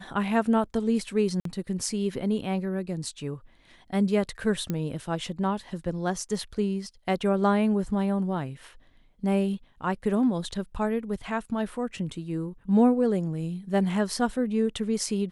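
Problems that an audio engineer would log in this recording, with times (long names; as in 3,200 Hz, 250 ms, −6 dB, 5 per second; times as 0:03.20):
0:01.40–0:01.45: drop-out 53 ms
0:04.70: click −16 dBFS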